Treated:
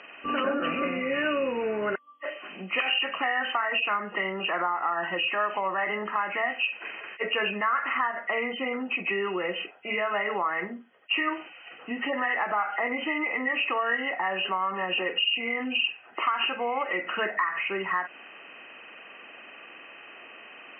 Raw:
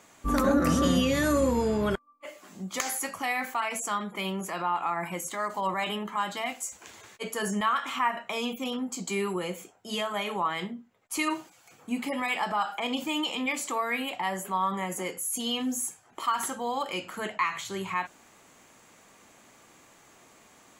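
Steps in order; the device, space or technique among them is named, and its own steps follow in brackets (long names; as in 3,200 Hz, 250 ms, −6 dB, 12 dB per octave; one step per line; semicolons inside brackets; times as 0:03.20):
hearing aid with frequency lowering (hearing-aid frequency compression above 1,800 Hz 4 to 1; downward compressor 4 to 1, threshold −32 dBFS, peak gain reduction 11.5 dB; loudspeaker in its box 370–5,700 Hz, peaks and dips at 920 Hz −5 dB, 1,500 Hz +4 dB, 2,200 Hz −4 dB)
level +9 dB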